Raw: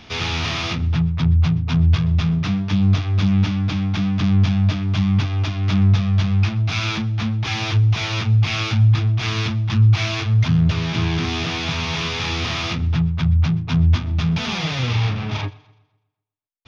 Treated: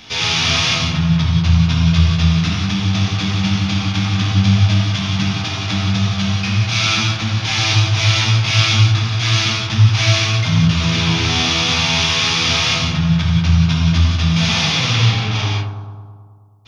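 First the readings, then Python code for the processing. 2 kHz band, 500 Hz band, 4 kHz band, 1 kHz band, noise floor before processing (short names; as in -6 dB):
+7.5 dB, +4.0 dB, +10.5 dB, +6.0 dB, -57 dBFS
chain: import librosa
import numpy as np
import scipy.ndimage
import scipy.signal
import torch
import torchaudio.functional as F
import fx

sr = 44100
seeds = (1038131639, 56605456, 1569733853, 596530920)

p1 = fx.high_shelf(x, sr, hz=2800.0, db=12.0)
p2 = p1 + fx.echo_bbd(p1, sr, ms=107, stages=1024, feedback_pct=69, wet_db=-8.5, dry=0)
p3 = fx.rev_gated(p2, sr, seeds[0], gate_ms=220, shape='flat', drr_db=-3.5)
y = F.gain(torch.from_numpy(p3), -2.0).numpy()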